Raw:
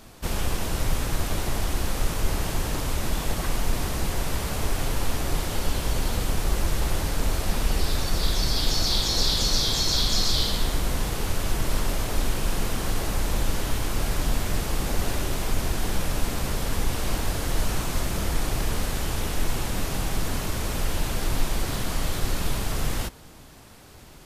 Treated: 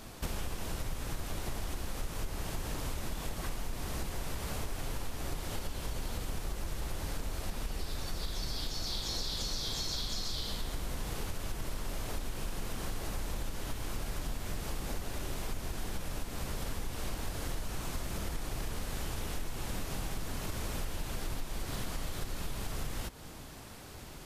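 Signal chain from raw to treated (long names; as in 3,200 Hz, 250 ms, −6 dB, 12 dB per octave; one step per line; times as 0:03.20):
downward compressor, threshold −33 dBFS, peak gain reduction 16.5 dB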